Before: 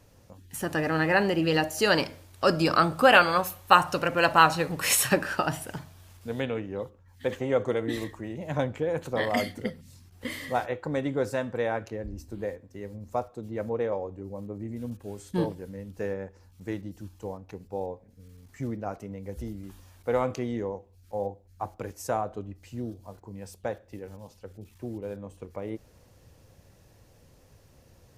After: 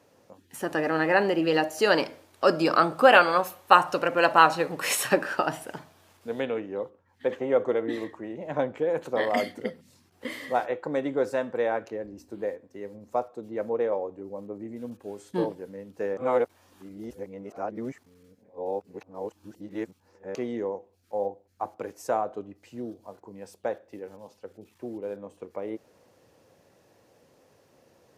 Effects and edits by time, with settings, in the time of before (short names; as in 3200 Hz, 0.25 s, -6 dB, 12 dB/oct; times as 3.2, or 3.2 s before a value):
6.79–8.77 high shelf 4600 Hz -9 dB
16.17–20.35 reverse
whole clip: HPF 350 Hz 12 dB/oct; tilt -2 dB/oct; gain +1.5 dB